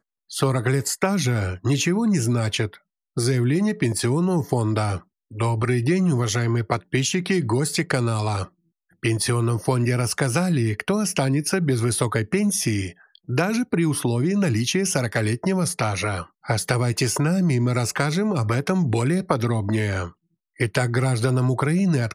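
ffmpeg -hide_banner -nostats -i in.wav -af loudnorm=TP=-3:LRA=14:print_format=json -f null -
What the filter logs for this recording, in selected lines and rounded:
"input_i" : "-22.4",
"input_tp" : "-4.5",
"input_lra" : "1.2",
"input_thresh" : "-32.7",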